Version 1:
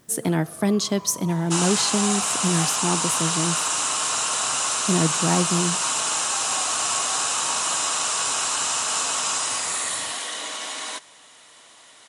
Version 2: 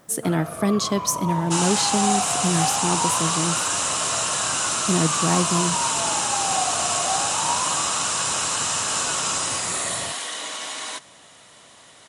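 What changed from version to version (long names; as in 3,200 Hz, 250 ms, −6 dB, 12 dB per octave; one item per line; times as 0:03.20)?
first sound +11.5 dB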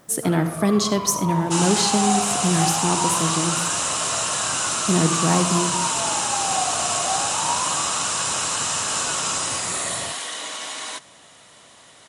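reverb: on, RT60 0.55 s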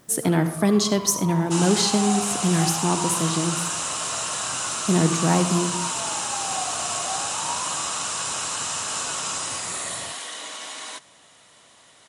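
first sound −6.0 dB
second sound −4.0 dB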